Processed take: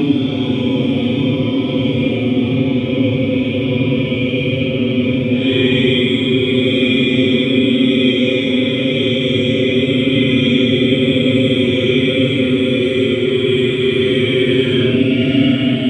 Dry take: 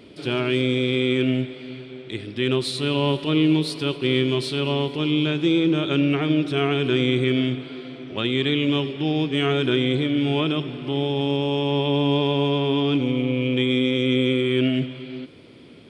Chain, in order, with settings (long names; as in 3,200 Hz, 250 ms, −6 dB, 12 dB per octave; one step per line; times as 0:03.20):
delay with a high-pass on its return 260 ms, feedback 66%, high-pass 3,900 Hz, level −8 dB
extreme stretch with random phases 9.1×, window 0.05 s, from 0:12.97
level +6.5 dB